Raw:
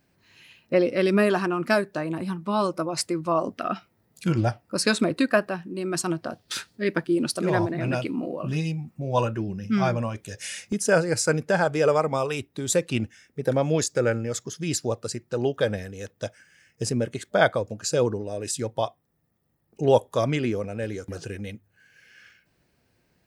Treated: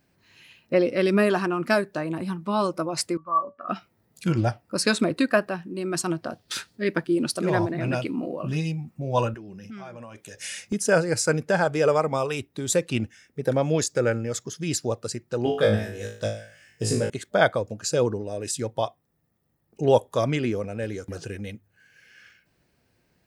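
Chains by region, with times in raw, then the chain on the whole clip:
3.17–3.69 synth low-pass 1200 Hz, resonance Q 4.3 + resonator 570 Hz, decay 0.19 s, mix 90%
9.34–10.37 HPF 280 Hz 6 dB/oct + dynamic EQ 4600 Hz, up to -5 dB, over -56 dBFS, Q 2.8 + compressor, threshold -37 dBFS
15.44–17.1 notch 6200 Hz, Q 10 + flutter echo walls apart 3.2 m, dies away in 0.47 s
whole clip: dry

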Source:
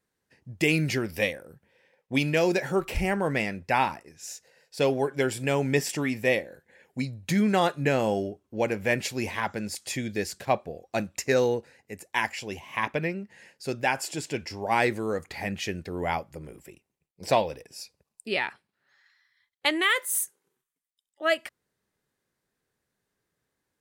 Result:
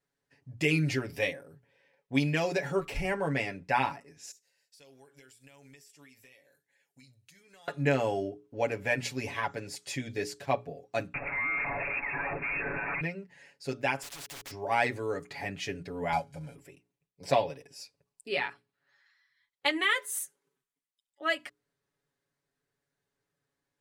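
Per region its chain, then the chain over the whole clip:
4.31–7.68 pre-emphasis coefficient 0.9 + compressor 10:1, threshold -49 dBFS
11.14–13.01 infinite clipping + inverted band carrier 2600 Hz
14.02–14.51 companded quantiser 2-bit + spectral compressor 4:1
16.12–16.55 CVSD 64 kbps + comb 1.3 ms, depth 88%
whole clip: high shelf 12000 Hz -12 dB; notches 60/120/180/240/300/360/420 Hz; comb 7.1 ms, depth 81%; gain -5.5 dB

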